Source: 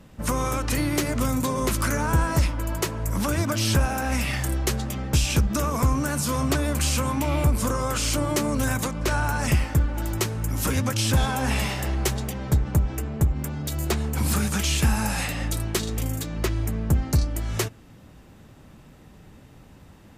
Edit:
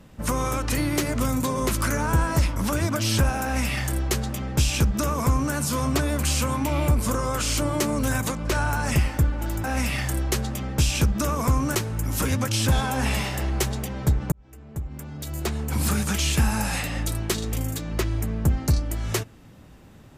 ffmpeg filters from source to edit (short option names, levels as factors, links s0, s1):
-filter_complex "[0:a]asplit=5[s0][s1][s2][s3][s4];[s0]atrim=end=2.562[s5];[s1]atrim=start=3.118:end=10.202[s6];[s2]atrim=start=3.988:end=6.102[s7];[s3]atrim=start=10.198:end=12.77,asetpts=PTS-STARTPTS,afade=t=out:st=2.568:d=0.004:c=hsin[s8];[s4]atrim=start=12.77,asetpts=PTS-STARTPTS,afade=t=in:d=1.57[s9];[s5][s6]acrossfade=d=0.004:c1=hsin:c2=hsin[s10];[s10][s7]acrossfade=d=0.004:c1=hsin:c2=hsin[s11];[s8][s9]concat=n=2:v=0:a=1[s12];[s11][s12]acrossfade=d=0.004:c1=hsin:c2=hsin"